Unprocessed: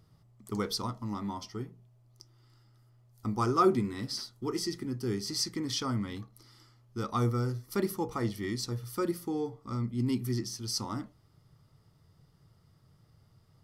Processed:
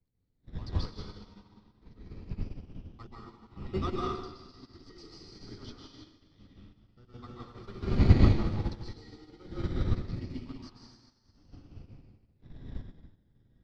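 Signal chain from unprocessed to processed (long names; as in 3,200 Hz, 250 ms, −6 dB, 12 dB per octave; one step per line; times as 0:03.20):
slices reordered back to front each 83 ms, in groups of 6
wind on the microphone 130 Hz −30 dBFS
low-shelf EQ 64 Hz +8 dB
in parallel at −8 dB: sample-and-hold swept by an LFO 20×, swing 60% 0.25 Hz
on the sum: transistor ladder low-pass 4,900 Hz, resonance 45%
low-shelf EQ 130 Hz −7 dB
dense smooth reverb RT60 2.3 s, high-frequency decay 0.9×, pre-delay 120 ms, DRR −5.5 dB
expander for the loud parts 2.5 to 1, over −42 dBFS
level +5 dB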